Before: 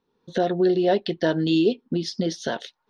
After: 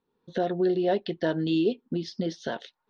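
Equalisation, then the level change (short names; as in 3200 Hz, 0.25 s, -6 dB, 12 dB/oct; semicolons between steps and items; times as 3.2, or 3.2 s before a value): Bessel low-pass 4000 Hz, order 2; -4.5 dB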